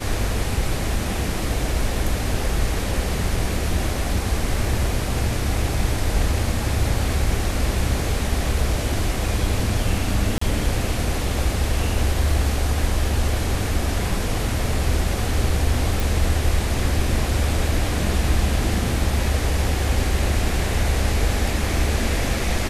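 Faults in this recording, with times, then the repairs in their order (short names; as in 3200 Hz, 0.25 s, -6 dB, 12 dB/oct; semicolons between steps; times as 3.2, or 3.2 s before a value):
10.38–10.41 gap 34 ms
16 pop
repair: de-click; interpolate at 10.38, 34 ms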